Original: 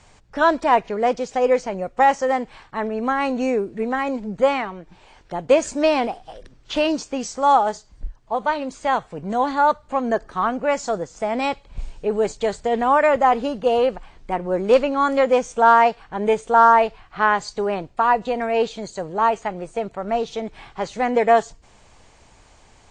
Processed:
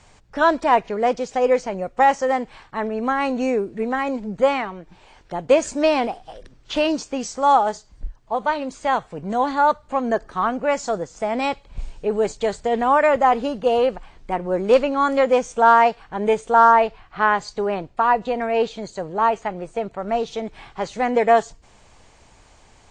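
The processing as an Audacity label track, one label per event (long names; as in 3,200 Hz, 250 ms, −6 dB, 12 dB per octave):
16.710000	19.990000	high-shelf EQ 7,000 Hz −7 dB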